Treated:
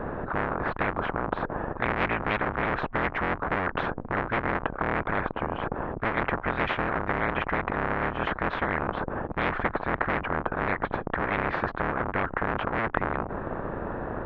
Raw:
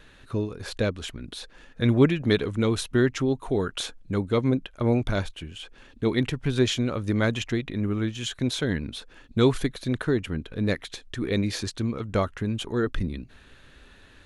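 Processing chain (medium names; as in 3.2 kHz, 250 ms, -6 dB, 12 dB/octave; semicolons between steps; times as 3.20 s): cycle switcher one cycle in 3, inverted; low-pass 1.1 kHz 24 dB/octave; spectrum-flattening compressor 10:1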